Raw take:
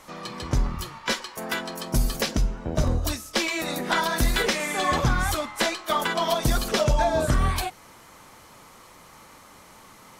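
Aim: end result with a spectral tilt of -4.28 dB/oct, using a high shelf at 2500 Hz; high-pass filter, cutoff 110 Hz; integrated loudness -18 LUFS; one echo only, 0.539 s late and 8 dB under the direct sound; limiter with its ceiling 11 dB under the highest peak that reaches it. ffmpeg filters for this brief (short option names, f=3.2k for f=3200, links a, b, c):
-af "highpass=110,highshelf=f=2.5k:g=-5.5,alimiter=limit=-22.5dB:level=0:latency=1,aecho=1:1:539:0.398,volume=14dB"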